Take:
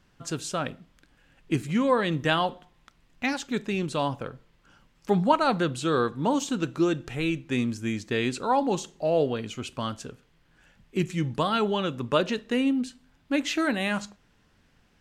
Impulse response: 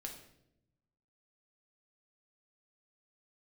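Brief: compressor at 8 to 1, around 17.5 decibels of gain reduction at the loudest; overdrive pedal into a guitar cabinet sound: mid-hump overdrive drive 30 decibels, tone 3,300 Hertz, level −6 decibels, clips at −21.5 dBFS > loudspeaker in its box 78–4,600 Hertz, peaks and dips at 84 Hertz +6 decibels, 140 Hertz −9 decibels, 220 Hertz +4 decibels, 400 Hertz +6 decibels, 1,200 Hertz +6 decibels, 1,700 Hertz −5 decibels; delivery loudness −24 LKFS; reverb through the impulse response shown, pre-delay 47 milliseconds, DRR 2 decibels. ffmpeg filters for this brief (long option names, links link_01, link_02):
-filter_complex "[0:a]acompressor=threshold=-34dB:ratio=8,asplit=2[link_01][link_02];[1:a]atrim=start_sample=2205,adelay=47[link_03];[link_02][link_03]afir=irnorm=-1:irlink=0,volume=1dB[link_04];[link_01][link_04]amix=inputs=2:normalize=0,asplit=2[link_05][link_06];[link_06]highpass=frequency=720:poles=1,volume=30dB,asoftclip=type=tanh:threshold=-21.5dB[link_07];[link_05][link_07]amix=inputs=2:normalize=0,lowpass=frequency=3300:poles=1,volume=-6dB,highpass=78,equalizer=frequency=84:width_type=q:width=4:gain=6,equalizer=frequency=140:width_type=q:width=4:gain=-9,equalizer=frequency=220:width_type=q:width=4:gain=4,equalizer=frequency=400:width_type=q:width=4:gain=6,equalizer=frequency=1200:width_type=q:width=4:gain=6,equalizer=frequency=1700:width_type=q:width=4:gain=-5,lowpass=frequency=4600:width=0.5412,lowpass=frequency=4600:width=1.3066,volume=4dB"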